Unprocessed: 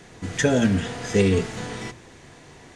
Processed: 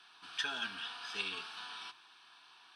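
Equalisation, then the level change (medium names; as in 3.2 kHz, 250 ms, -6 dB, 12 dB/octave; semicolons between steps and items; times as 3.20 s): high-pass 1.3 kHz 12 dB/octave; distance through air 51 m; static phaser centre 2 kHz, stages 6; -2.0 dB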